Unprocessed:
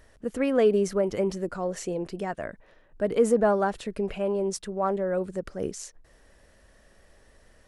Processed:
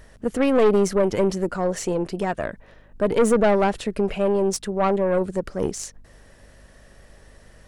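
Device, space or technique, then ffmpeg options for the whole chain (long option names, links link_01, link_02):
valve amplifier with mains hum: -af "aeval=exprs='(tanh(11.2*val(0)+0.45)-tanh(0.45))/11.2':channel_layout=same,aeval=exprs='val(0)+0.000794*(sin(2*PI*50*n/s)+sin(2*PI*2*50*n/s)/2+sin(2*PI*3*50*n/s)/3+sin(2*PI*4*50*n/s)/4+sin(2*PI*5*50*n/s)/5)':channel_layout=same,volume=8.5dB"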